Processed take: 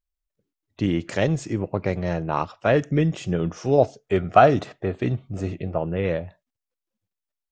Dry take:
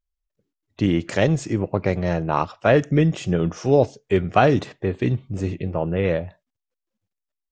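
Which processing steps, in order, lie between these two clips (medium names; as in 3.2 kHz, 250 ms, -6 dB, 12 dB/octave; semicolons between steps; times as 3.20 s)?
3.78–5.78 s: small resonant body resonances 680/1300 Hz, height 9 dB, ringing for 20 ms; trim -3 dB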